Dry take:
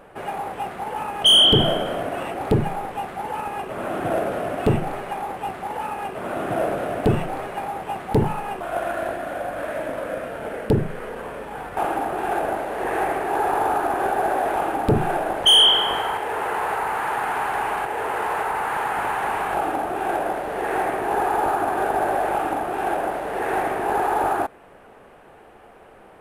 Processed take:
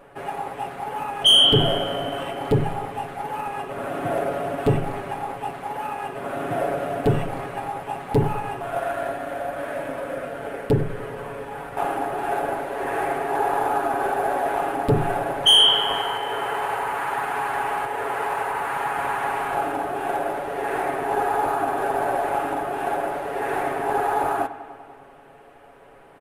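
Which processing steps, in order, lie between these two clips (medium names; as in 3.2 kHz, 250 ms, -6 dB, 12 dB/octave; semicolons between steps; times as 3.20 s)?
comb 7.2 ms; feedback echo behind a low-pass 98 ms, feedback 73%, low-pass 3.9 kHz, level -15.5 dB; trim -3 dB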